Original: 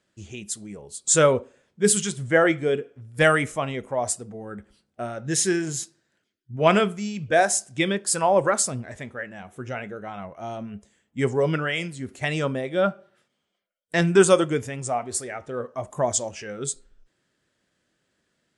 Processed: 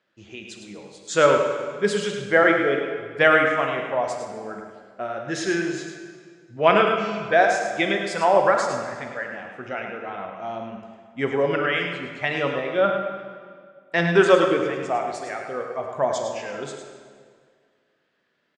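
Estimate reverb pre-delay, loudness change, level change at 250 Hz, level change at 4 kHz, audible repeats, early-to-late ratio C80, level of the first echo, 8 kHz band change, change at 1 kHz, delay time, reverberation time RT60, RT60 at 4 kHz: 25 ms, +1.0 dB, -1.0 dB, +0.5 dB, 1, 3.5 dB, -7.5 dB, -13.5 dB, +4.0 dB, 105 ms, 2.0 s, 1.5 s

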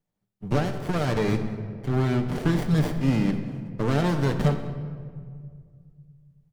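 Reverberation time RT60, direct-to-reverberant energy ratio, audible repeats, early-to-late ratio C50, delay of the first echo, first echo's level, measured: 2.0 s, 5.0 dB, 1, 8.0 dB, 192 ms, -21.0 dB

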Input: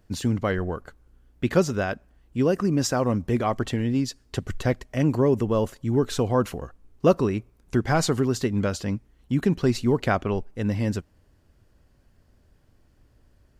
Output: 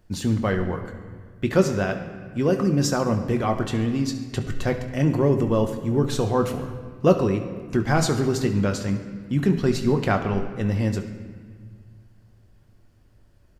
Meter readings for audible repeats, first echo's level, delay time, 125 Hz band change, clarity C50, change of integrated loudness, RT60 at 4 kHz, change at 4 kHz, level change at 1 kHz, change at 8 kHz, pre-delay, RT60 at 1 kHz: 1, -16.0 dB, 70 ms, +2.5 dB, 8.5 dB, +1.5 dB, 1.2 s, +1.0 dB, +1.0 dB, +1.0 dB, 6 ms, 1.6 s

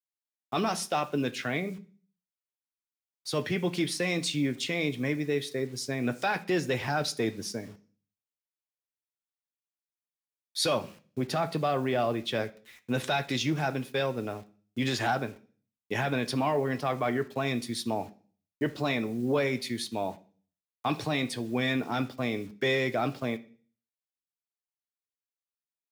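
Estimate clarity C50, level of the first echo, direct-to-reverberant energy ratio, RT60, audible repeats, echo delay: 18.5 dB, no echo, 8.5 dB, 0.40 s, no echo, no echo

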